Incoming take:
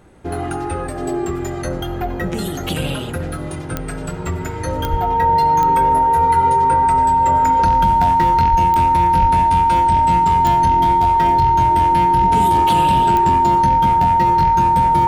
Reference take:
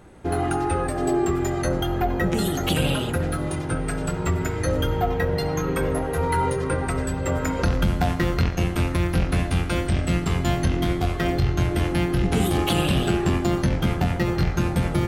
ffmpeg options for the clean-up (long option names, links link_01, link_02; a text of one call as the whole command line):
ffmpeg -i in.wav -filter_complex "[0:a]adeclick=threshold=4,bandreject=frequency=920:width=30,asplit=3[link_01][link_02][link_03];[link_01]afade=type=out:start_time=4.9:duration=0.02[link_04];[link_02]highpass=frequency=140:width=0.5412,highpass=frequency=140:width=1.3066,afade=type=in:start_time=4.9:duration=0.02,afade=type=out:start_time=5.02:duration=0.02[link_05];[link_03]afade=type=in:start_time=5.02:duration=0.02[link_06];[link_04][link_05][link_06]amix=inputs=3:normalize=0,asplit=3[link_07][link_08][link_09];[link_07]afade=type=out:start_time=8.5:duration=0.02[link_10];[link_08]highpass=frequency=140:width=0.5412,highpass=frequency=140:width=1.3066,afade=type=in:start_time=8.5:duration=0.02,afade=type=out:start_time=8.62:duration=0.02[link_11];[link_09]afade=type=in:start_time=8.62:duration=0.02[link_12];[link_10][link_11][link_12]amix=inputs=3:normalize=0,asplit=3[link_13][link_14][link_15];[link_13]afade=type=out:start_time=9.21:duration=0.02[link_16];[link_14]highpass=frequency=140:width=0.5412,highpass=frequency=140:width=1.3066,afade=type=in:start_time=9.21:duration=0.02,afade=type=out:start_time=9.33:duration=0.02[link_17];[link_15]afade=type=in:start_time=9.33:duration=0.02[link_18];[link_16][link_17][link_18]amix=inputs=3:normalize=0" out.wav